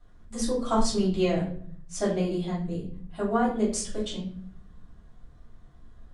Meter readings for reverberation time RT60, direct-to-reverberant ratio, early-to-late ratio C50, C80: non-exponential decay, −7.0 dB, 6.0 dB, 10.5 dB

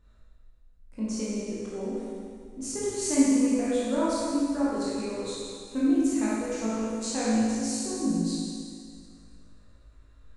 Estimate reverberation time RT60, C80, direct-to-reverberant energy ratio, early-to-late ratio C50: 2.1 s, −2.0 dB, −9.5 dB, −4.5 dB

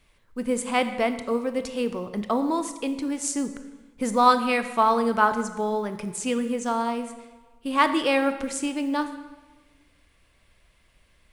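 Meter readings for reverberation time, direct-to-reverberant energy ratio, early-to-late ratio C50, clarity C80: 1.3 s, 9.0 dB, 10.5 dB, 12.0 dB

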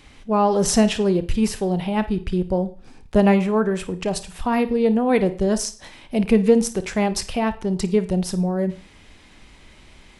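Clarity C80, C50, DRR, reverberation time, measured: 20.0 dB, 13.5 dB, 11.5 dB, 0.40 s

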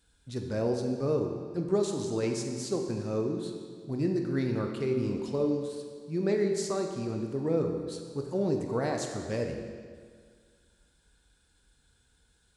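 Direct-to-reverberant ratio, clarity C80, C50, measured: 3.0 dB, 6.0 dB, 4.5 dB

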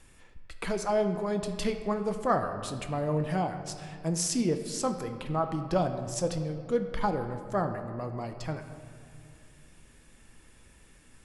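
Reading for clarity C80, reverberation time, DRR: 9.5 dB, 2.3 s, 6.5 dB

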